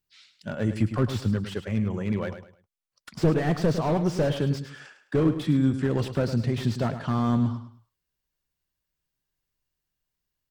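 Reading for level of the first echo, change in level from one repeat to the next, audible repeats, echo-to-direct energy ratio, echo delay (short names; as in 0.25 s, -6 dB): -10.5 dB, -11.0 dB, 3, -10.0 dB, 0.105 s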